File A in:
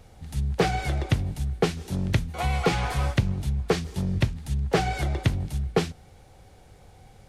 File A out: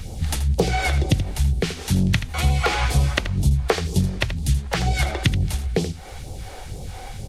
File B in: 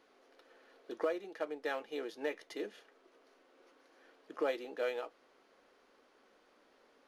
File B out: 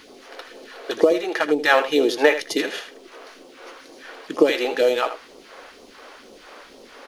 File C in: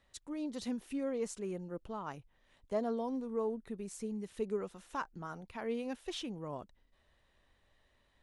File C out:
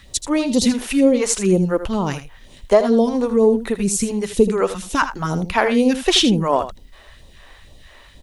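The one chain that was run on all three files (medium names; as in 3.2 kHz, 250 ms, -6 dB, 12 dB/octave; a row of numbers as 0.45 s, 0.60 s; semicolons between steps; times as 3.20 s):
compression 6:1, threshold -34 dBFS; phase shifter stages 2, 2.1 Hz, lowest notch 120–1700 Hz; on a send: delay 80 ms -11.5 dB; on the sum: peak normalisation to -2 dBFS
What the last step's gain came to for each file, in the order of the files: +18.0 dB, +25.0 dB, +26.5 dB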